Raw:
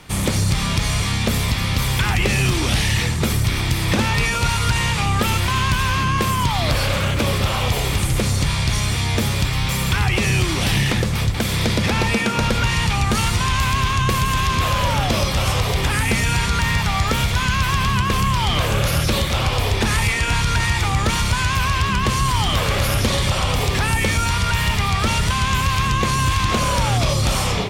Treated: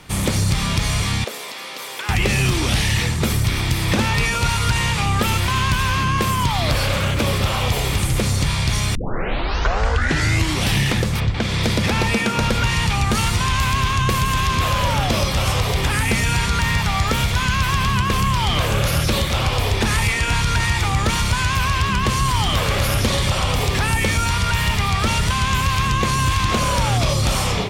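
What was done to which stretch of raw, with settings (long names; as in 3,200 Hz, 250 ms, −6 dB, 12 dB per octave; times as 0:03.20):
0:01.24–0:02.09: four-pole ladder high-pass 340 Hz, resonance 30%
0:08.95: tape start 1.64 s
0:11.19–0:11.62: low-pass filter 3,200 Hz → 7,000 Hz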